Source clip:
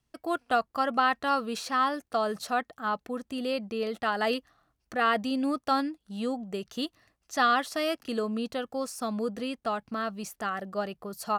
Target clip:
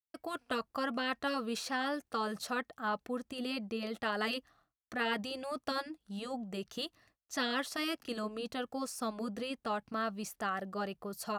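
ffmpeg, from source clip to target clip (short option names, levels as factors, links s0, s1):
-af "agate=range=0.0224:threshold=0.00126:ratio=3:detection=peak,afftfilt=real='re*lt(hypot(re,im),0.282)':imag='im*lt(hypot(re,im),0.282)':win_size=1024:overlap=0.75,volume=0.708"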